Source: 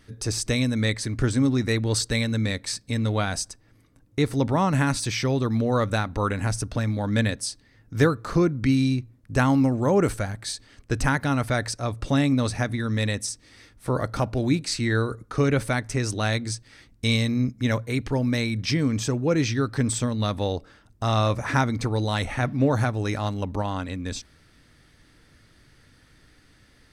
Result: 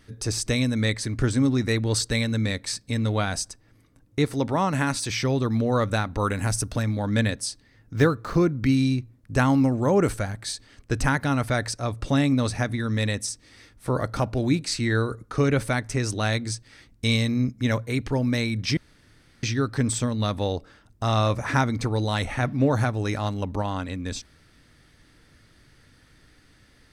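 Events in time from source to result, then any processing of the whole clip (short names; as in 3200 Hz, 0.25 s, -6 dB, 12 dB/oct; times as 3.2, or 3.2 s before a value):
4.25–5.1 low shelf 150 Hz -8 dB
6.19–6.83 high shelf 8600 Hz +11.5 dB
7.94–8.69 median filter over 5 samples
18.77–19.43 room tone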